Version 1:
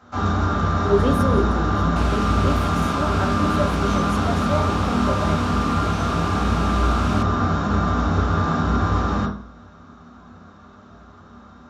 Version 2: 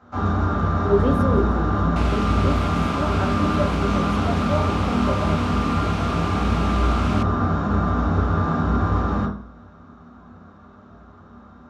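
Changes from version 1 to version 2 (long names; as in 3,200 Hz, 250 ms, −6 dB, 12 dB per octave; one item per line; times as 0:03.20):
second sound +7.5 dB
master: add high-shelf EQ 2,700 Hz −12 dB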